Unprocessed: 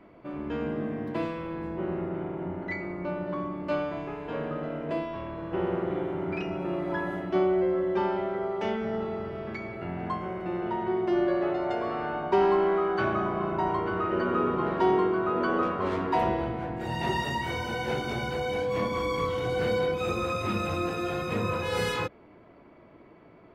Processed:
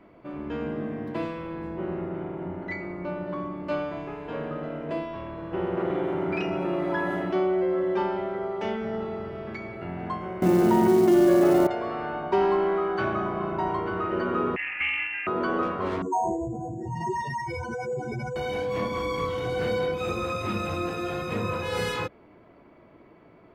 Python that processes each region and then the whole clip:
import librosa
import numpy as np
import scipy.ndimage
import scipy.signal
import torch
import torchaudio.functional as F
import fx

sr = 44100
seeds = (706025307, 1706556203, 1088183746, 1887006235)

y = fx.chain(x, sr, fx.low_shelf(hz=110.0, db=-9.5),
    fx.env_flatten(amount_pct=50), at=(5.77, 8.03))
y = fx.chain(y, sr, fx.peak_eq(hz=230.0, db=11.5, octaves=1.3),
    fx.quant_companded(bits=6),
    fx.env_flatten(amount_pct=70), at=(10.42, 11.67))
y = fx.chain(y, sr, fx.highpass(hz=580.0, slope=12),
    fx.freq_invert(carrier_hz=3100),
    fx.doppler_dist(depth_ms=0.15), at=(14.56, 15.27))
y = fx.chain(y, sr, fx.spec_expand(power=3.0),
    fx.resample_bad(factor=6, down='none', up='hold'),
    fx.lowpass(hz=4100.0, slope=12), at=(16.02, 18.36))